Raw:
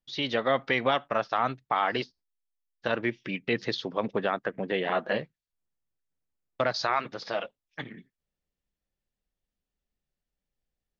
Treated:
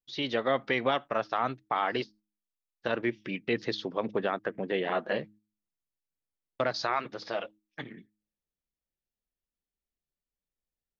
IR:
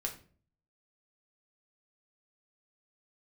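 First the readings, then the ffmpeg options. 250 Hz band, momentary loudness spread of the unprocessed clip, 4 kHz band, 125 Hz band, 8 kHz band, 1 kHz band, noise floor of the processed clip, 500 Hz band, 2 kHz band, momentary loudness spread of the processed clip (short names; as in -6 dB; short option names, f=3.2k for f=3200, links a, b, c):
-1.0 dB, 13 LU, -3.0 dB, -3.0 dB, n/a, -2.5 dB, under -85 dBFS, -1.5 dB, -3.0 dB, 13 LU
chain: -af "equalizer=f=350:w=1.5:g=3.5,bandreject=f=105.2:t=h:w=4,bandreject=f=210.4:t=h:w=4,bandreject=f=315.6:t=h:w=4,agate=range=-6dB:threshold=-50dB:ratio=16:detection=peak,volume=-3dB"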